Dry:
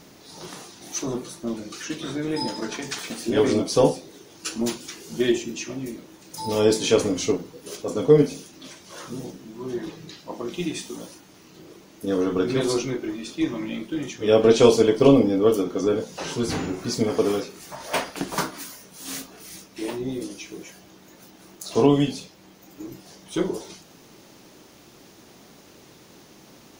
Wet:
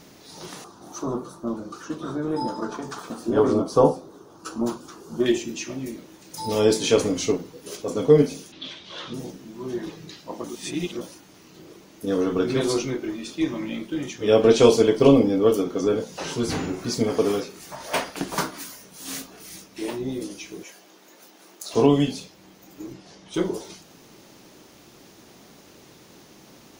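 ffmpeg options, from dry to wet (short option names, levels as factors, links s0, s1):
-filter_complex "[0:a]asettb=1/sr,asplit=3[s0][s1][s2];[s0]atrim=end=0.644[s3];[s1]atrim=start=0.64:end=5.26,asetpts=PTS-STARTPTS,afade=t=in:d=0.004:c=qsin,afade=t=out:st=4.616:d=0.004:c=qsin,highshelf=f=1600:t=q:w=3:g=-9[s4];[s2]atrim=start=5.256[s5];[s3][s4]acrossfade=d=0.004:c1=hsin:c2=qsin[s6];[s6][s5]acrossfade=d=0.004:c1=qsin:c2=hsin,asettb=1/sr,asplit=3[s7][s8][s9];[s7]atrim=end=8.524[s10];[s8]atrim=start=8.52:end=9.14,asetpts=PTS-STARTPTS,afade=t=in:d=0.004:c=qsin,afade=t=out:st=0.616:d=0.004:c=qsin,lowpass=f=3500:t=q:w=4[s11];[s9]atrim=start=9.136[s12];[s10][s11]acrossfade=d=0.004:c1=hsin:c2=qsin[s13];[s13][s12]acrossfade=d=0.004:c1=qsin:c2=hsin,asettb=1/sr,asplit=3[s14][s15][s16];[s14]atrim=end=20.634[s17];[s15]atrim=start=20.63:end=21.74,asetpts=PTS-STARTPTS,afade=t=in:d=0.004:c=qsin,afade=t=out:st=1.106:d=0.004:c=qsin,highpass=340[s18];[s16]atrim=start=21.736[s19];[s17][s18]acrossfade=d=0.004:c1=hsin:c2=qsin[s20];[s20][s19]acrossfade=d=0.004:c1=qsin:c2=hsin,asettb=1/sr,asplit=3[s21][s22][s23];[s21]atrim=end=22.924[s24];[s22]atrim=start=22.92:end=23.34,asetpts=PTS-STARTPTS,afade=t=in:d=0.004:c=qsin,afade=t=out:st=0.416:d=0.004:c=qsin,lowpass=5900[s25];[s23]atrim=start=23.336[s26];[s24][s25]acrossfade=d=0.004:c1=hsin:c2=qsin[s27];[s27][s26]acrossfade=d=0.004:c1=qsin:c2=hsin,asplit=3[s28][s29][s30];[s28]atrim=end=10.442[s31];[s29]atrim=start=10.438:end=11.012,asetpts=PTS-STARTPTS,areverse[s32];[s30]atrim=start=11.008[s33];[s31][s32]acrossfade=d=0.004:c1=hsin:c2=hsin[s34];[s34][s33]acrossfade=d=0.004:c1=hsin:c2=hsin"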